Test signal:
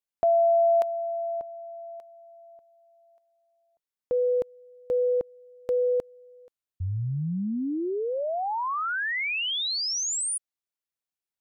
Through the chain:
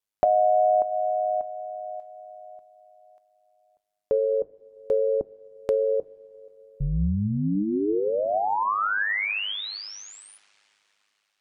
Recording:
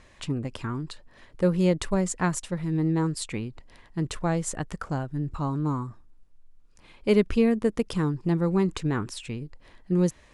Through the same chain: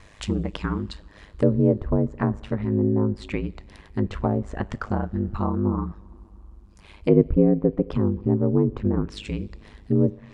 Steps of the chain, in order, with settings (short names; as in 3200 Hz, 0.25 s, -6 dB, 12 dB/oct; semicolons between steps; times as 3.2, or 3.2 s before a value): treble ducked by the level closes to 570 Hz, closed at -21.5 dBFS; two-slope reverb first 0.27 s, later 3.8 s, from -19 dB, DRR 15 dB; ring modulator 51 Hz; gain +7 dB